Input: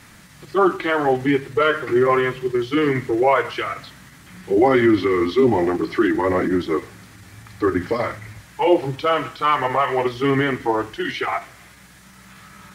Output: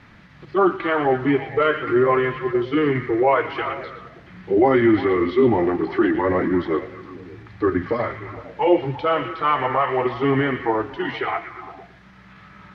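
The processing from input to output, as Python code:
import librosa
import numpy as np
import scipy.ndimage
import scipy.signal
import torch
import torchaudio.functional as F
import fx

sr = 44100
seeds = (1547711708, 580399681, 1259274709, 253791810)

y = fx.air_absorb(x, sr, metres=270.0)
y = fx.echo_stepped(y, sr, ms=115, hz=2600.0, octaves=-0.7, feedback_pct=70, wet_db=-7.0)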